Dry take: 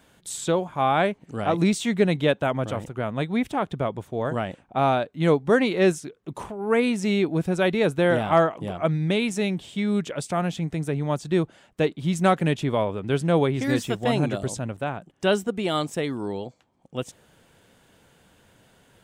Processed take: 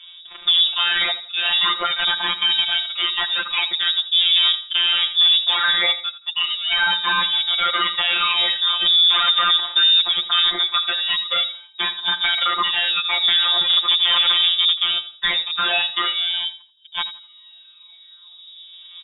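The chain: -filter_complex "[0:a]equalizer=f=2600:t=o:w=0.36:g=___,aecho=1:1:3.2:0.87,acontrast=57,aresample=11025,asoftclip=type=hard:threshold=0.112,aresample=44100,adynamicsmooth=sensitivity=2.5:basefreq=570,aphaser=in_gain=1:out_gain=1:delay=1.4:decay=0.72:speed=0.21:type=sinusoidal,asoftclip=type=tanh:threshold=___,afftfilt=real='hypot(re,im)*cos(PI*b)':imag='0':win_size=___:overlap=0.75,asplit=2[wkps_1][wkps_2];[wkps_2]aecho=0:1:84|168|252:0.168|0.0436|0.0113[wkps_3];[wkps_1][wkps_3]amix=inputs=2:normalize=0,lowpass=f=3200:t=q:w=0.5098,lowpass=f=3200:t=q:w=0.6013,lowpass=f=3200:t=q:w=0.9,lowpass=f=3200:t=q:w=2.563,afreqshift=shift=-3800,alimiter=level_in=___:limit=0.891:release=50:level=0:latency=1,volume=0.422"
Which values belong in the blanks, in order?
14, 0.355, 1024, 4.73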